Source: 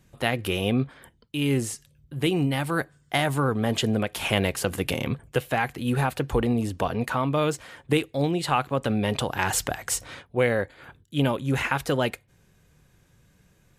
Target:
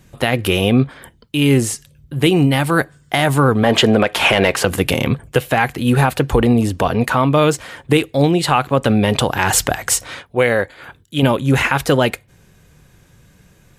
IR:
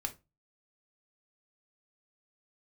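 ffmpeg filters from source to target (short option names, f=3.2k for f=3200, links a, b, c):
-filter_complex "[0:a]asettb=1/sr,asplit=3[a][b][c];[a]atrim=end=3.634[d];[b]atrim=start=3.63:end=4.65,asetpts=PTS-STARTPTS,afade=t=in:d=0.004:c=qsin,afade=t=out:st=1.016:d=0.004:c=qsin,asplit=2[e][f];[f]highpass=f=720:p=1,volume=15dB,asoftclip=type=tanh:threshold=-5.5dB[g];[e][g]amix=inputs=2:normalize=0,lowpass=f=1.9k:p=1,volume=-6dB[h];[c]atrim=start=4.646[i];[d][h]acrossfade=d=0.004:c1=hsin:c2=qsin[j];[j][i]acrossfade=d=0.004:c1=qsin:c2=hsin,asettb=1/sr,asplit=3[k][l][m];[k]atrim=end=9.934[n];[l]atrim=start=9.93:end=11.23,asetpts=PTS-STARTPTS,afade=t=in:d=0.004:c=qsin,afade=t=out:st=1.296:d=0.004:c=qsin,lowshelf=f=400:g=-6[o];[m]atrim=start=11.226[p];[n][o]acrossfade=d=0.004:c1=hsin:c2=qsin[q];[q][p]acrossfade=d=0.004:c1=qsin:c2=hsin,alimiter=level_in=11.5dB:limit=-1dB:release=50:level=0:latency=1,volume=-1dB"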